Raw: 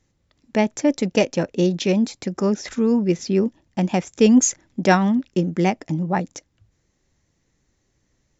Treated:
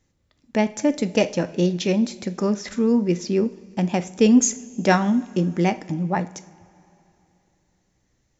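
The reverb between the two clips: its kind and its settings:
coupled-rooms reverb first 0.42 s, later 3.1 s, from −18 dB, DRR 11 dB
level −1.5 dB

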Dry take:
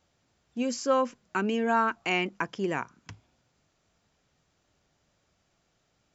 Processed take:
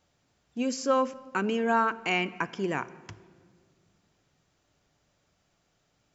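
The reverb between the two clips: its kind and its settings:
rectangular room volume 2,800 cubic metres, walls mixed, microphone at 0.36 metres

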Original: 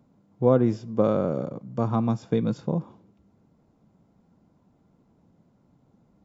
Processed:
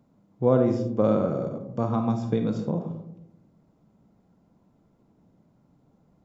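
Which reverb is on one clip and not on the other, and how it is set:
comb and all-pass reverb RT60 0.81 s, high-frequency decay 0.25×, pre-delay 10 ms, DRR 5.5 dB
level −1.5 dB

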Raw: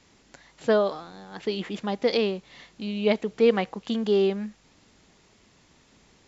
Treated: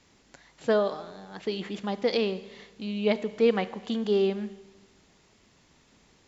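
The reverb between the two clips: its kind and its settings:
four-comb reverb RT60 1.2 s, combs from 31 ms, DRR 14.5 dB
level −2.5 dB

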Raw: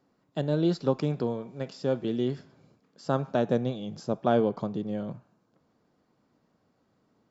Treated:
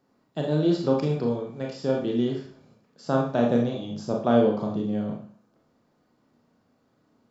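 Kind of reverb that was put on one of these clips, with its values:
four-comb reverb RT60 0.45 s, combs from 26 ms, DRR 0 dB

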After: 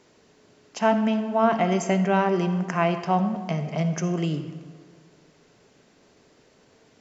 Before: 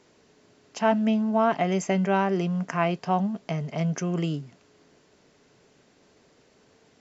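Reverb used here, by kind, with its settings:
comb and all-pass reverb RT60 1.7 s, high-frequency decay 0.55×, pre-delay 20 ms, DRR 9 dB
level +1.5 dB

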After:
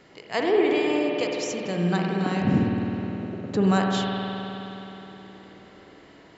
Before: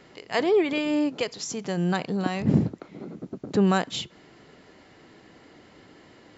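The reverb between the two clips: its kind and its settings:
spring reverb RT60 3.7 s, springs 52 ms, chirp 50 ms, DRR −1 dB
level −1.5 dB

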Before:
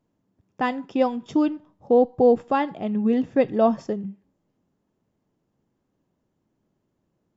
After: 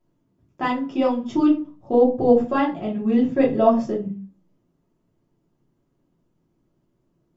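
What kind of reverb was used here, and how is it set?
rectangular room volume 120 cubic metres, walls furnished, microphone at 2.9 metres
level −5 dB

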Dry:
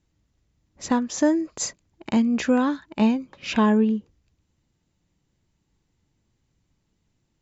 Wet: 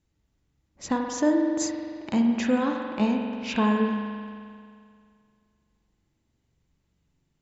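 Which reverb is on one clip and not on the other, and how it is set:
spring reverb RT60 2.2 s, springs 43 ms, chirp 30 ms, DRR 1.5 dB
level −4 dB

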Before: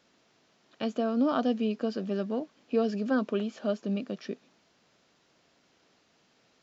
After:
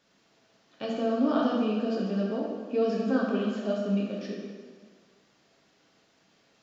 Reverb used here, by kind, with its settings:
dense smooth reverb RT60 1.6 s, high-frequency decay 0.85×, DRR −3.5 dB
level −3.5 dB

